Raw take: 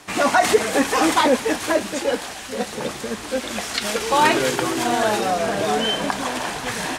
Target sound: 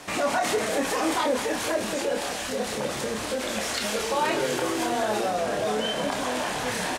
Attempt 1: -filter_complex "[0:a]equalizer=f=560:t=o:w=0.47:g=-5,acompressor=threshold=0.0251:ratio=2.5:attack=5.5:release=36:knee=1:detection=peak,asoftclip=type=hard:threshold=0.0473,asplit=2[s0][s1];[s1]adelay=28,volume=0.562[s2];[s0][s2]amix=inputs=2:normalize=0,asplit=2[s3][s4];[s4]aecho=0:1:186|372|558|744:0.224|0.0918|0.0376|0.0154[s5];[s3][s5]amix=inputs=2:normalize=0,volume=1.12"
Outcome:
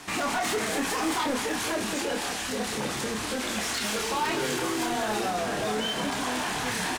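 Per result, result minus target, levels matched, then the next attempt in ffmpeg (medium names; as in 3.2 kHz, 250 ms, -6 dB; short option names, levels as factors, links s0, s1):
hard clipper: distortion +22 dB; 500 Hz band -3.5 dB
-filter_complex "[0:a]equalizer=f=560:t=o:w=0.47:g=-5,acompressor=threshold=0.0251:ratio=2.5:attack=5.5:release=36:knee=1:detection=peak,asoftclip=type=hard:threshold=0.119,asplit=2[s0][s1];[s1]adelay=28,volume=0.562[s2];[s0][s2]amix=inputs=2:normalize=0,asplit=2[s3][s4];[s4]aecho=0:1:186|372|558|744:0.224|0.0918|0.0376|0.0154[s5];[s3][s5]amix=inputs=2:normalize=0,volume=1.12"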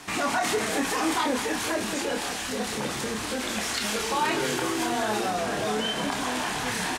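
500 Hz band -3.5 dB
-filter_complex "[0:a]equalizer=f=560:t=o:w=0.47:g=5.5,acompressor=threshold=0.0251:ratio=2.5:attack=5.5:release=36:knee=1:detection=peak,asoftclip=type=hard:threshold=0.119,asplit=2[s0][s1];[s1]adelay=28,volume=0.562[s2];[s0][s2]amix=inputs=2:normalize=0,asplit=2[s3][s4];[s4]aecho=0:1:186|372|558|744:0.224|0.0918|0.0376|0.0154[s5];[s3][s5]amix=inputs=2:normalize=0,volume=1.12"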